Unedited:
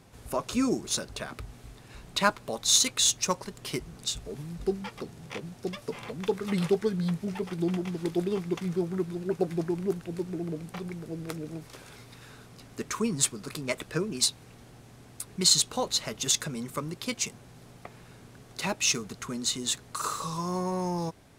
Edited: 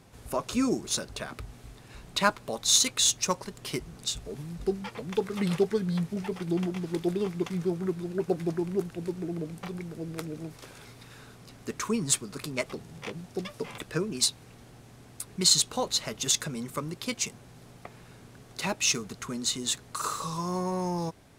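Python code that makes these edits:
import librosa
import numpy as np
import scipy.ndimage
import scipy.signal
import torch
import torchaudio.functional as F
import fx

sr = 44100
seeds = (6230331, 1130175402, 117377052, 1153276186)

y = fx.edit(x, sr, fx.move(start_s=4.95, length_s=1.11, to_s=13.78), tone=tone)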